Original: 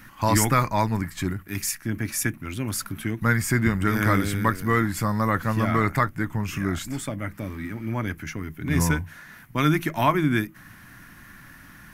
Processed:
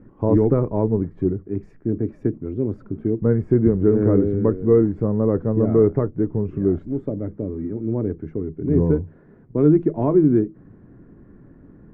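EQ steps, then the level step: synth low-pass 430 Hz, resonance Q 4.9; +2.0 dB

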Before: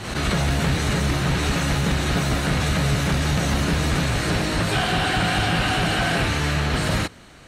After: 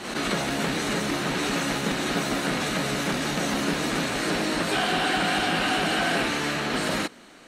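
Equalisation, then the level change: bell 71 Hz -12 dB 0.85 oct; resonant low shelf 170 Hz -10 dB, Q 1.5; -2.0 dB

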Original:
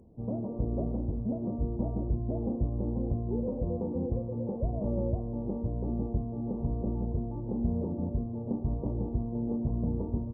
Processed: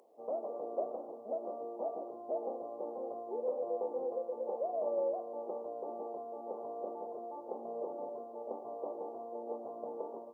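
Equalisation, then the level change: HPF 550 Hz 24 dB/oct; notch 940 Hz, Q 15; +6.5 dB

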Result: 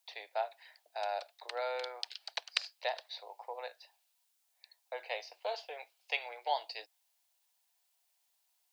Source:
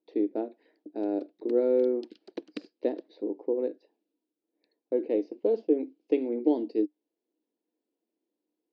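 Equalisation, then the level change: steep high-pass 710 Hz 48 dB/oct; high shelf 2500 Hz +12 dB; +8.0 dB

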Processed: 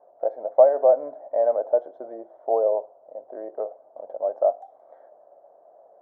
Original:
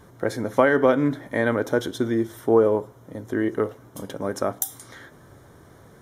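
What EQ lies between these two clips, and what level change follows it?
Butterworth band-pass 650 Hz, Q 3.5; +8.5 dB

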